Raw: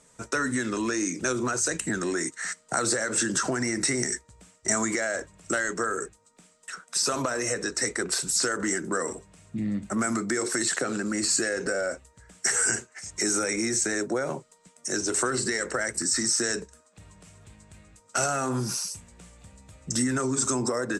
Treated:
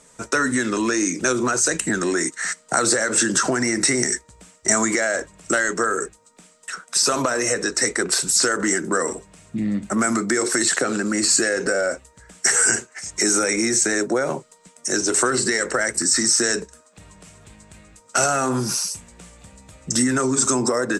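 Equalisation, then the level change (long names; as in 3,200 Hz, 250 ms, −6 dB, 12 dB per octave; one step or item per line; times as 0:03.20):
parametric band 90 Hz −6 dB 1.3 octaves
+7.0 dB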